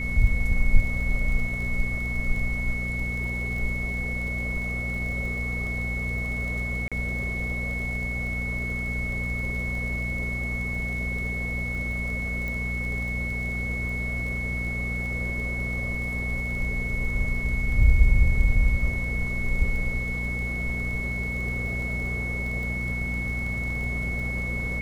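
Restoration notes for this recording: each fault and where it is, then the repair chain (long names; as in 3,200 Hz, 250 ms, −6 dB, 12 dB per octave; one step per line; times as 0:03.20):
surface crackle 25 per second −33 dBFS
mains hum 60 Hz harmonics 4 −31 dBFS
whistle 2,200 Hz −30 dBFS
0:06.88–0:06.92: drop-out 36 ms
0:12.48: click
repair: click removal
hum removal 60 Hz, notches 4
notch filter 2,200 Hz, Q 30
repair the gap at 0:06.88, 36 ms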